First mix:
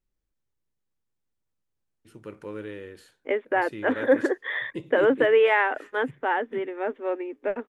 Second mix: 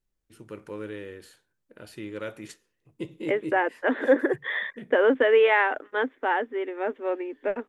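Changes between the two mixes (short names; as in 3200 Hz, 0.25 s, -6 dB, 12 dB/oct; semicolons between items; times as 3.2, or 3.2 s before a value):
first voice: entry -1.75 s; master: add high shelf 5200 Hz +4.5 dB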